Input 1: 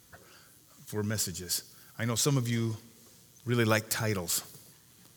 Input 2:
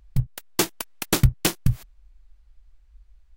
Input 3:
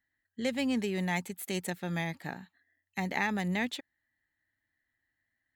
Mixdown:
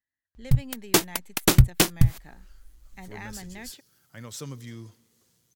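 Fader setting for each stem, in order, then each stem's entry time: -10.5 dB, +2.0 dB, -11.0 dB; 2.15 s, 0.35 s, 0.00 s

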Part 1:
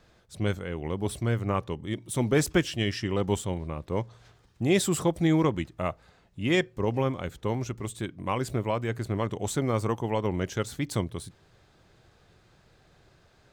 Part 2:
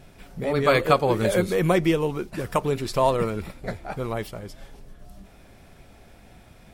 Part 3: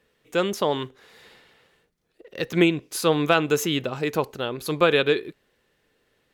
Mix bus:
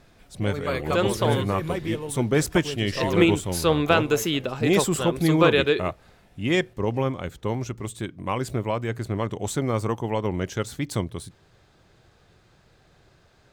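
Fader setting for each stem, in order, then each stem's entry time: +2.0 dB, -9.0 dB, -0.5 dB; 0.00 s, 0.00 s, 0.60 s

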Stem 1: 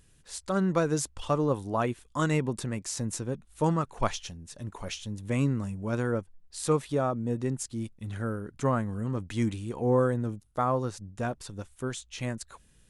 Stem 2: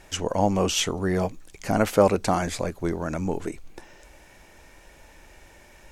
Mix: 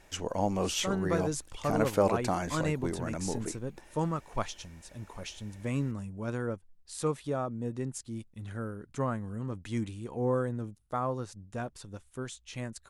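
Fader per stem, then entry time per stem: -5.0 dB, -7.5 dB; 0.35 s, 0.00 s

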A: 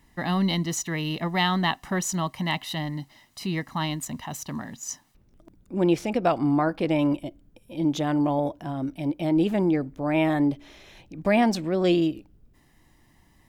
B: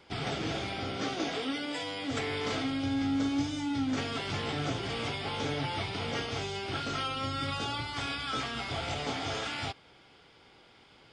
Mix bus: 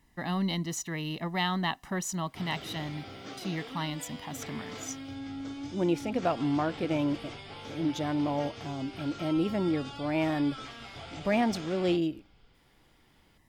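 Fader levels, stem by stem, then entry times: -6.0 dB, -9.5 dB; 0.00 s, 2.25 s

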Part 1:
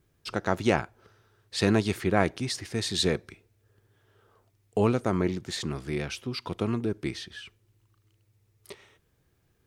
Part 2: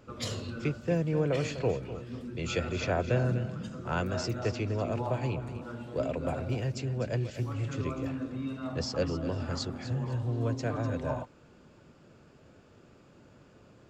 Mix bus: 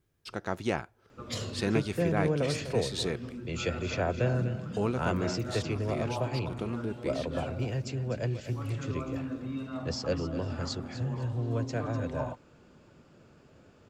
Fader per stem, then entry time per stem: -6.5 dB, -0.5 dB; 0.00 s, 1.10 s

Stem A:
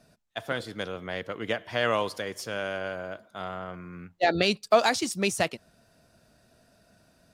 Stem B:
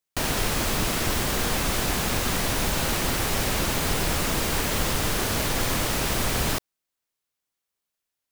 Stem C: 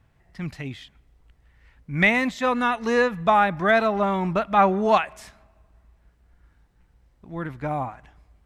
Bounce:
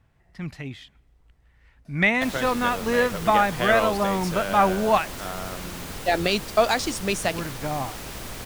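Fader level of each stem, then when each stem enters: +1.0 dB, -11.0 dB, -1.5 dB; 1.85 s, 2.05 s, 0.00 s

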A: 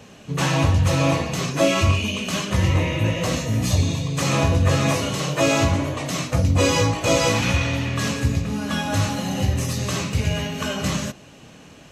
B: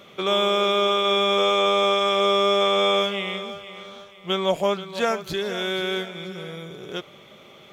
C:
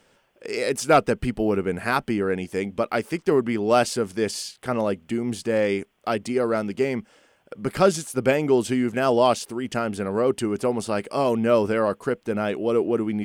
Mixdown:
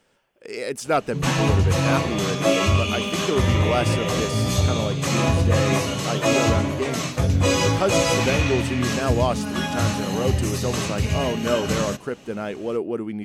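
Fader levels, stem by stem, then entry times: -1.0 dB, -11.5 dB, -4.0 dB; 0.85 s, 1.85 s, 0.00 s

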